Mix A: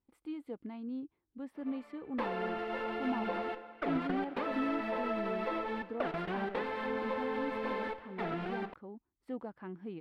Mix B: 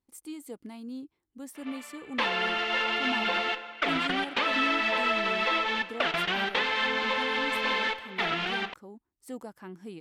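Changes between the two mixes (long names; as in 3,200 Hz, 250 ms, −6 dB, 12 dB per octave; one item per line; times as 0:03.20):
background: add drawn EQ curve 440 Hz 0 dB, 3,200 Hz +14 dB, 11,000 Hz −22 dB
master: remove high-frequency loss of the air 430 metres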